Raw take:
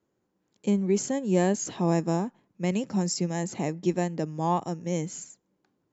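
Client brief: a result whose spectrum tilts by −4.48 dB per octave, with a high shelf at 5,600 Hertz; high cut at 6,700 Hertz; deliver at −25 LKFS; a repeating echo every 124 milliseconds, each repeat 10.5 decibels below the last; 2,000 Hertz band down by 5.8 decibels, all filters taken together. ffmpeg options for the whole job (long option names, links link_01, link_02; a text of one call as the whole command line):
ffmpeg -i in.wav -af "lowpass=6700,equalizer=frequency=2000:width_type=o:gain=-6.5,highshelf=frequency=5600:gain=-3.5,aecho=1:1:124|248|372:0.299|0.0896|0.0269,volume=3dB" out.wav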